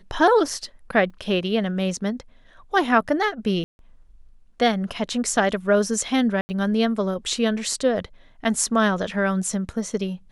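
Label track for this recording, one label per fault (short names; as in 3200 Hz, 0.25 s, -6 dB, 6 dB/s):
1.100000	1.100000	gap 4.3 ms
3.640000	3.790000	gap 0.151 s
6.410000	6.490000	gap 80 ms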